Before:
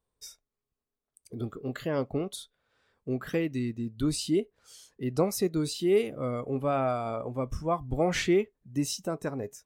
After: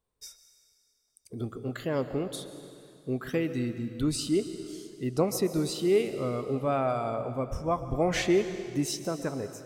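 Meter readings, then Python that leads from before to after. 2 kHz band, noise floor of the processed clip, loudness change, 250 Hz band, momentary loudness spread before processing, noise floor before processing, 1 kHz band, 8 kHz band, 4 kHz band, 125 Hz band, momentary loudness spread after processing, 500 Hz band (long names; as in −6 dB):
+0.5 dB, −72 dBFS, 0.0 dB, +0.5 dB, 12 LU, below −85 dBFS, +0.5 dB, +0.5 dB, +0.5 dB, +0.5 dB, 15 LU, +0.5 dB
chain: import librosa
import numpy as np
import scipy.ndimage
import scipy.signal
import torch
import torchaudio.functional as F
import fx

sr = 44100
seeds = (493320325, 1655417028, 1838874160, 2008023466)

y = fx.rev_plate(x, sr, seeds[0], rt60_s=2.4, hf_ratio=0.95, predelay_ms=105, drr_db=10.0)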